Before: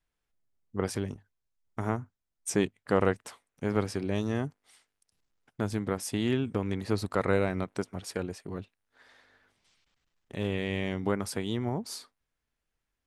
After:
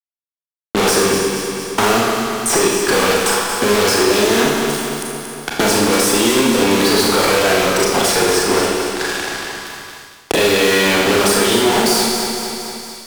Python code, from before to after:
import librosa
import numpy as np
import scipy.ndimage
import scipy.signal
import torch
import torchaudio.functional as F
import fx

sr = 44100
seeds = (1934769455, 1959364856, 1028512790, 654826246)

p1 = scipy.signal.sosfilt(scipy.signal.butter(2, 440.0, 'highpass', fs=sr, output='sos'), x)
p2 = fx.notch(p1, sr, hz=2100.0, q=6.0)
p3 = fx.level_steps(p2, sr, step_db=23)
p4 = p2 + (p3 * librosa.db_to_amplitude(2.0))
p5 = fx.notch_comb(p4, sr, f0_hz=610.0)
p6 = fx.fuzz(p5, sr, gain_db=53.0, gate_db=-55.0)
p7 = p6 + fx.echo_feedback(p6, sr, ms=230, feedback_pct=40, wet_db=-10.0, dry=0)
p8 = fx.rev_schroeder(p7, sr, rt60_s=1.0, comb_ms=27, drr_db=-3.0)
p9 = fx.band_squash(p8, sr, depth_pct=70)
y = p9 * librosa.db_to_amplitude(-4.0)